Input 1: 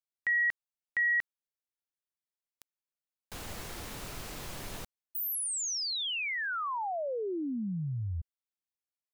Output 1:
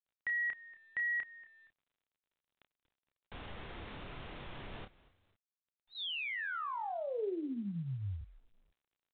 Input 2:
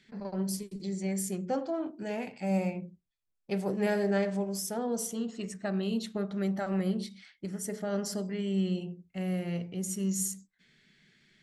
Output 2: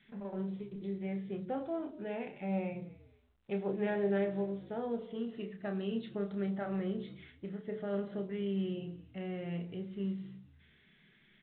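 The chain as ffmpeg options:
-filter_complex "[0:a]adynamicequalizer=threshold=0.00316:dfrequency=420:dqfactor=3.8:tfrequency=420:tqfactor=3.8:attack=5:release=100:ratio=0.333:range=2.5:mode=boostabove:tftype=bell,asplit=2[a][b];[b]adelay=30,volume=-7.5dB[c];[a][c]amix=inputs=2:normalize=0,asplit=3[d][e][f];[e]adelay=234,afreqshift=-57,volume=-23.5dB[g];[f]adelay=468,afreqshift=-114,volume=-33.1dB[h];[d][g][h]amix=inputs=3:normalize=0,asplit=2[i][j];[j]acompressor=threshold=-41dB:ratio=5:attack=1.5:release=101:detection=rms,volume=-1dB[k];[i][k]amix=inputs=2:normalize=0,volume=-8dB" -ar 8000 -c:a pcm_mulaw

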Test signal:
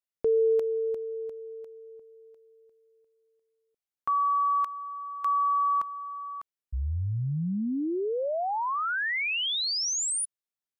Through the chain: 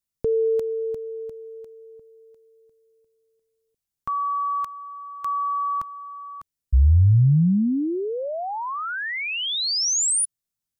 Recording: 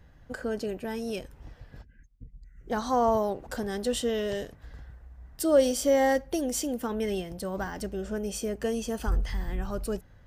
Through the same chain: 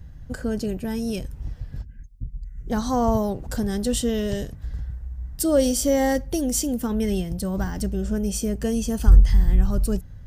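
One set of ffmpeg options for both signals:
-af "bass=f=250:g=15,treble=f=4k:g=8"

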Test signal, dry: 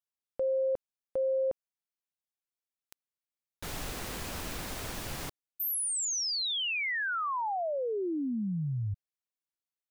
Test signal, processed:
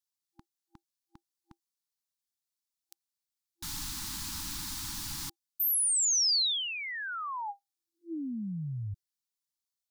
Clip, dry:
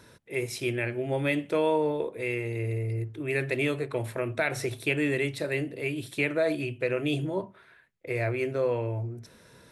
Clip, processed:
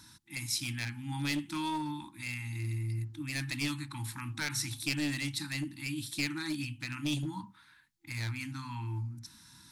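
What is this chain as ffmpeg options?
-af "afftfilt=real='re*(1-between(b*sr/4096,340,800))':imag='im*(1-between(b*sr/4096,340,800))':win_size=4096:overlap=0.75,aeval=exprs='clip(val(0),-1,0.0447)':c=same,highshelf=f=3.3k:t=q:w=1.5:g=7.5,volume=-3.5dB"

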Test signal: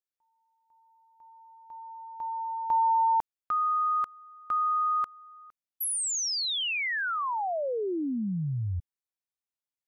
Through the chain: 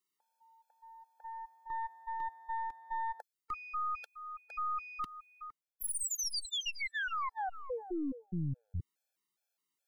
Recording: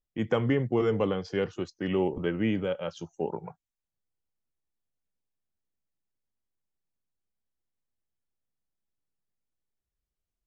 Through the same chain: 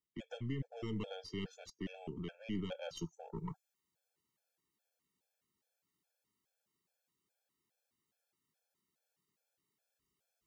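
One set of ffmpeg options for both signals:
-filter_complex "[0:a]acrossover=split=210|3000[a][b][c];[b]acompressor=threshold=-40dB:ratio=6:attack=0.12:release=551:knee=2.83:detection=peak[d];[a][d][c]amix=inputs=3:normalize=0,highpass=150,areverse,acompressor=threshold=-43dB:ratio=16:attack=1:release=584:knee=6:detection=rms,areverse,aeval=exprs='(tanh(112*val(0)+0.75)-tanh(0.75))/112':c=same,afftfilt=real='re*gt(sin(2*PI*2.4*pts/sr)*(1-2*mod(floor(b*sr/1024/450),2)),0)':imag='im*gt(sin(2*PI*2.4*pts/sr)*(1-2*mod(floor(b*sr/1024/450),2)),0)':win_size=1024:overlap=0.75,volume=15dB"

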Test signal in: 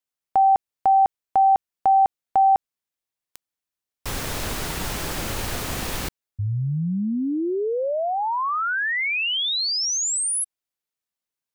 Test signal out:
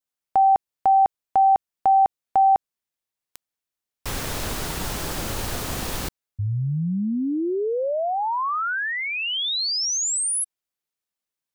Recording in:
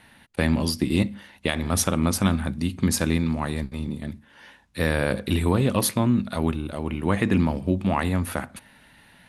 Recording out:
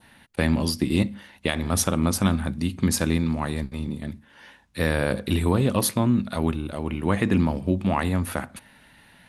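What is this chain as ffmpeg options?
-af "adynamicequalizer=threshold=0.0126:dfrequency=2200:dqfactor=1.5:tfrequency=2200:tqfactor=1.5:attack=5:release=100:ratio=0.375:range=2:mode=cutabove:tftype=bell"

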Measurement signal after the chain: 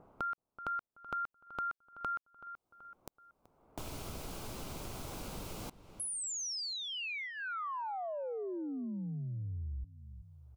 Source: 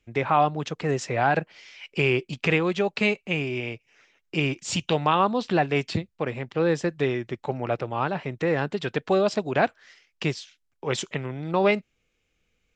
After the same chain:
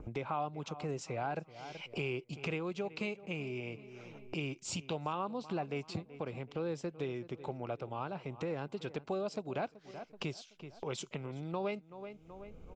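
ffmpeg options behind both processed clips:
-filter_complex "[0:a]adynamicequalizer=threshold=0.00398:dfrequency=3400:dqfactor=2.9:tfrequency=3400:tqfactor=2.9:attack=5:release=100:ratio=0.375:range=3.5:mode=cutabove:tftype=bell,acrossover=split=1100[a][b];[a]acompressor=mode=upward:threshold=-30dB:ratio=2.5[c];[c][b]amix=inputs=2:normalize=0,equalizer=f=1.8k:w=4.9:g=-12.5,asplit=2[d][e];[e]adelay=379,lowpass=f=3k:p=1,volume=-19dB,asplit=2[f][g];[g]adelay=379,lowpass=f=3k:p=1,volume=0.39,asplit=2[h][i];[i]adelay=379,lowpass=f=3k:p=1,volume=0.39[j];[d][f][h][j]amix=inputs=4:normalize=0,acompressor=threshold=-48dB:ratio=2,volume=1dB"

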